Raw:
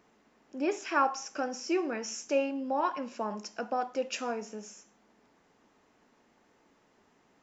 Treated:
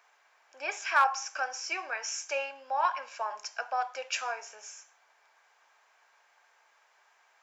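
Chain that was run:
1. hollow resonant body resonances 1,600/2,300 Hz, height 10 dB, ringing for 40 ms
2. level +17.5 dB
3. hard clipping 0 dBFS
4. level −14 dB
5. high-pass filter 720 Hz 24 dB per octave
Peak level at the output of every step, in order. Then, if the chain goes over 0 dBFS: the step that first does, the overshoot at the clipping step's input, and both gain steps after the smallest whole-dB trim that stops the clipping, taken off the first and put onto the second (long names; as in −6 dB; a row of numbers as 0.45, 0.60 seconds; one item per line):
−14.0, +3.5, 0.0, −14.0, −12.0 dBFS
step 2, 3.5 dB
step 2 +13.5 dB, step 4 −10 dB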